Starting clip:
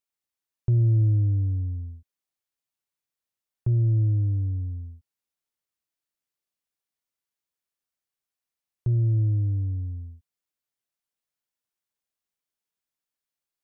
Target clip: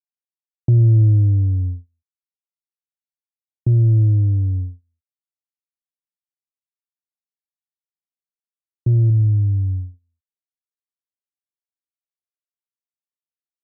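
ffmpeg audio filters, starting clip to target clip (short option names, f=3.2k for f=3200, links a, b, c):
-filter_complex "[0:a]asettb=1/sr,asplit=3[a][b][c];[a]atrim=end=9.104[d];[b]atrim=start=9.1:end=9.94,asetpts=PTS-STARTPTS,afade=t=in:d=0.004:c=qsin,afade=t=out:st=0.836:d=0.004:c=qsin,equalizer=f=410:w=1.6:g=-11[e];[c]atrim=start=9.936[f];[d][e]acrossfade=d=0.004:c1=hsin:c2=qsin[g];[g][f]acrossfade=d=0.004:c1=qsin:c2=hsin,agate=range=-39dB:threshold=-30dB:ratio=16:detection=peak,volume=7.5dB"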